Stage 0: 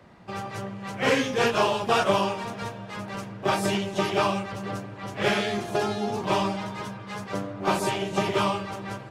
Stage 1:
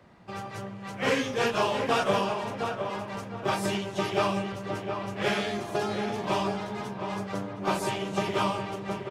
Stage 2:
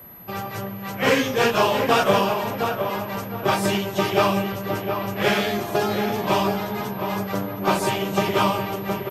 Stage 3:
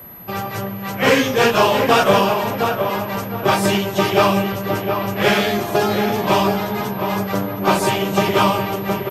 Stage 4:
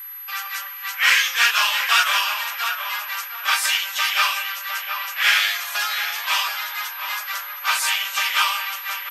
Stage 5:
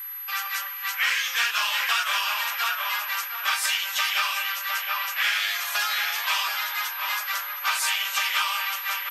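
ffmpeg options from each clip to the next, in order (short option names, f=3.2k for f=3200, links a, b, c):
-filter_complex "[0:a]asplit=2[a][b];[b]adelay=715,lowpass=f=1.9k:p=1,volume=-6dB,asplit=2[c][d];[d]adelay=715,lowpass=f=1.9k:p=1,volume=0.31,asplit=2[e][f];[f]adelay=715,lowpass=f=1.9k:p=1,volume=0.31,asplit=2[g][h];[h]adelay=715,lowpass=f=1.9k:p=1,volume=0.31[i];[a][c][e][g][i]amix=inputs=5:normalize=0,volume=-3.5dB"
-af "aeval=exprs='val(0)+0.00355*sin(2*PI*12000*n/s)':c=same,volume=7dB"
-af "acontrast=25"
-af "highpass=f=1.4k:w=0.5412,highpass=f=1.4k:w=1.3066,volume=4dB"
-af "acompressor=threshold=-21dB:ratio=6"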